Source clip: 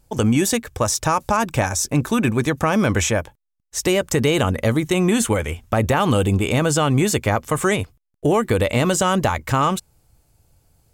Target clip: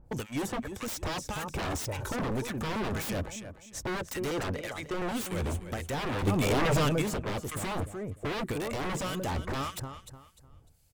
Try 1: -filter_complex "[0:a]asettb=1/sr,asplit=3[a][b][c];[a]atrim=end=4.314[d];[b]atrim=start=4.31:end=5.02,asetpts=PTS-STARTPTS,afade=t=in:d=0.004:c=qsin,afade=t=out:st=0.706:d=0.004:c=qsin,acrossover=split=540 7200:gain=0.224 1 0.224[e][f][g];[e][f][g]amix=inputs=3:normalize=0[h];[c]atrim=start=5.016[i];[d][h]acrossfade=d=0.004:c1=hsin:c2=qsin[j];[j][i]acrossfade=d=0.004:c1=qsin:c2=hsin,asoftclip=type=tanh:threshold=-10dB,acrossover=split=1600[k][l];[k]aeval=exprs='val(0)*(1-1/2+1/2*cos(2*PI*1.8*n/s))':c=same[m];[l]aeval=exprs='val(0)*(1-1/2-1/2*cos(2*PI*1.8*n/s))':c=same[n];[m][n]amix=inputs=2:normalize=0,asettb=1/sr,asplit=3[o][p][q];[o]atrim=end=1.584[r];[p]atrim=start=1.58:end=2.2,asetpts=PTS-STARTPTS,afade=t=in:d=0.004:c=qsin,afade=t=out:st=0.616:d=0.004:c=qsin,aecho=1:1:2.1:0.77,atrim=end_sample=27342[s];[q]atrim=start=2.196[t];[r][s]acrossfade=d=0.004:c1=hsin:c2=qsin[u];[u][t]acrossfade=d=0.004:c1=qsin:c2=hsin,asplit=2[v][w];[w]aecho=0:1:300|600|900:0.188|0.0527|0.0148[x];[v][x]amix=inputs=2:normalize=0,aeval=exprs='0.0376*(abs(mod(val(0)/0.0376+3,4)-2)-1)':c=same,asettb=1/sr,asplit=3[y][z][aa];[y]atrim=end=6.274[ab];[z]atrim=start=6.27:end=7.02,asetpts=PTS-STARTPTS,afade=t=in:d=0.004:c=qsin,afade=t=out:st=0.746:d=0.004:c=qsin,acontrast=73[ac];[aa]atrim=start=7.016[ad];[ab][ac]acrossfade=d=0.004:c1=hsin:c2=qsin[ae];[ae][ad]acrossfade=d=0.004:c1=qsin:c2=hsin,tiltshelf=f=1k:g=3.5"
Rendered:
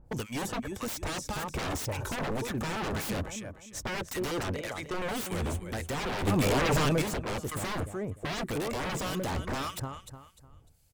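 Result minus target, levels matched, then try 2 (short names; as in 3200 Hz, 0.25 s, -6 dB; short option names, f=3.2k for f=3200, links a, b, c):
soft clip: distortion -8 dB
-filter_complex "[0:a]asettb=1/sr,asplit=3[a][b][c];[a]atrim=end=4.314[d];[b]atrim=start=4.31:end=5.02,asetpts=PTS-STARTPTS,afade=t=in:d=0.004:c=qsin,afade=t=out:st=0.706:d=0.004:c=qsin,acrossover=split=540 7200:gain=0.224 1 0.224[e][f][g];[e][f][g]amix=inputs=3:normalize=0[h];[c]atrim=start=5.016[i];[d][h]acrossfade=d=0.004:c1=hsin:c2=qsin[j];[j][i]acrossfade=d=0.004:c1=qsin:c2=hsin,asoftclip=type=tanh:threshold=-17dB,acrossover=split=1600[k][l];[k]aeval=exprs='val(0)*(1-1/2+1/2*cos(2*PI*1.8*n/s))':c=same[m];[l]aeval=exprs='val(0)*(1-1/2-1/2*cos(2*PI*1.8*n/s))':c=same[n];[m][n]amix=inputs=2:normalize=0,asettb=1/sr,asplit=3[o][p][q];[o]atrim=end=1.584[r];[p]atrim=start=1.58:end=2.2,asetpts=PTS-STARTPTS,afade=t=in:d=0.004:c=qsin,afade=t=out:st=0.616:d=0.004:c=qsin,aecho=1:1:2.1:0.77,atrim=end_sample=27342[s];[q]atrim=start=2.196[t];[r][s]acrossfade=d=0.004:c1=hsin:c2=qsin[u];[u][t]acrossfade=d=0.004:c1=qsin:c2=hsin,asplit=2[v][w];[w]aecho=0:1:300|600|900:0.188|0.0527|0.0148[x];[v][x]amix=inputs=2:normalize=0,aeval=exprs='0.0376*(abs(mod(val(0)/0.0376+3,4)-2)-1)':c=same,asettb=1/sr,asplit=3[y][z][aa];[y]atrim=end=6.274[ab];[z]atrim=start=6.27:end=7.02,asetpts=PTS-STARTPTS,afade=t=in:d=0.004:c=qsin,afade=t=out:st=0.746:d=0.004:c=qsin,acontrast=73[ac];[aa]atrim=start=7.016[ad];[ab][ac]acrossfade=d=0.004:c1=hsin:c2=qsin[ae];[ae][ad]acrossfade=d=0.004:c1=qsin:c2=hsin,tiltshelf=f=1k:g=3.5"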